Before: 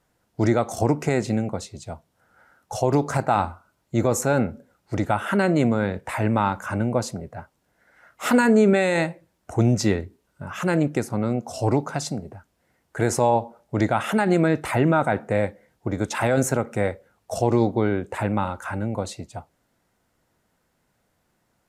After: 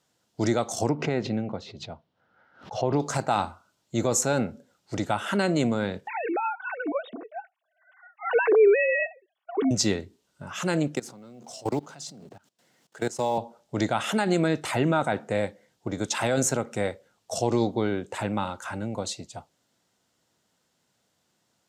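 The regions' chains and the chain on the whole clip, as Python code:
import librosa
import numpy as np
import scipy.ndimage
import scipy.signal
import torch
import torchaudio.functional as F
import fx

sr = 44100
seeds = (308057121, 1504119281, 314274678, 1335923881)

y = fx.chain(x, sr, fx.air_absorb(metres=300.0),
    fx.pre_swell(db_per_s=130.0), at=(0.89, 3.0))
y = fx.chain(y, sr, fx.sine_speech(),
    fx.comb(ms=2.7, depth=0.35), at=(6.07, 9.71))
y = fx.chain(y, sr, fx.law_mismatch(coded='mu'),
    fx.highpass(hz=120.0, slope=24),
    fx.level_steps(step_db=21), at=(10.95, 13.38))
y = scipy.signal.sosfilt(scipy.signal.butter(2, 110.0, 'highpass', fs=sr, output='sos'), y)
y = fx.band_shelf(y, sr, hz=4800.0, db=8.5, octaves=1.7)
y = y * 10.0 ** (-4.0 / 20.0)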